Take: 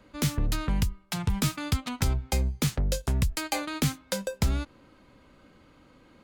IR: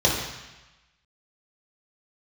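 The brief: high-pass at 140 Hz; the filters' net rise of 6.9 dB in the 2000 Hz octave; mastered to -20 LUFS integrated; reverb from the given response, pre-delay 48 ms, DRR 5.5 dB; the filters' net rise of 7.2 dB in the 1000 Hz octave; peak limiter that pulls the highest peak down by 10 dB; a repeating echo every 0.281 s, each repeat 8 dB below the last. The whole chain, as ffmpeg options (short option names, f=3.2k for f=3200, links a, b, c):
-filter_complex "[0:a]highpass=140,equalizer=f=1k:t=o:g=7.5,equalizer=f=2k:t=o:g=6.5,alimiter=limit=-19.5dB:level=0:latency=1,aecho=1:1:281|562|843|1124|1405:0.398|0.159|0.0637|0.0255|0.0102,asplit=2[a][b];[1:a]atrim=start_sample=2205,adelay=48[c];[b][c]afir=irnorm=-1:irlink=0,volume=-22.5dB[d];[a][d]amix=inputs=2:normalize=0,volume=10dB"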